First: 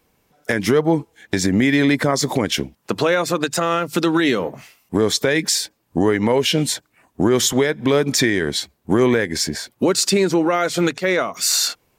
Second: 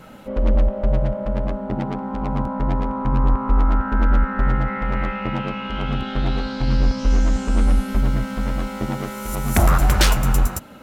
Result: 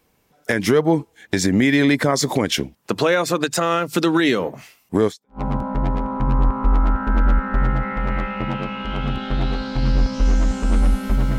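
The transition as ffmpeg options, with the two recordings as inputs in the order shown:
-filter_complex "[0:a]apad=whole_dur=11.38,atrim=end=11.38,atrim=end=5.41,asetpts=PTS-STARTPTS[s0];[1:a]atrim=start=1.92:end=8.23,asetpts=PTS-STARTPTS[s1];[s0][s1]acrossfade=d=0.34:c1=exp:c2=exp"

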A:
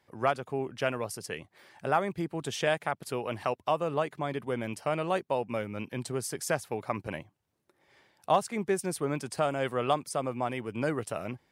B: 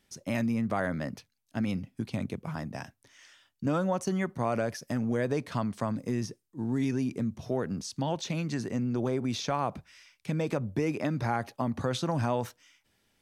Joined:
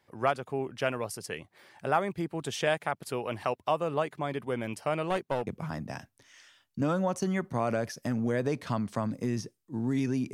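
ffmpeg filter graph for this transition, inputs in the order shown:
-filter_complex "[0:a]asettb=1/sr,asplit=3[s0][s1][s2];[s0]atrim=end=5.054[s3];[s1]atrim=start=5.05:end=5.47,asetpts=PTS-STARTPTS,afade=t=in:d=0.004:c=qsin,afade=t=out:st=0.416:d=0.004:c=qsin,aeval=exprs='clip(val(0),-1,0.0335)':c=same[s4];[s2]atrim=start=5.466[s5];[s3][s4]acrossfade=d=0.004:c1=hsin:c2=qsin[s6];[s6][s5]acrossfade=d=0.004:c1=qsin:c2=hsin,apad=whole_dur=10.33,atrim=end=10.33,atrim=end=5.472[s7];[1:a]atrim=start=2.318:end=7.18[s8];[s7][s8]acrossfade=d=0.004:c1=hsin:c2=hsin"

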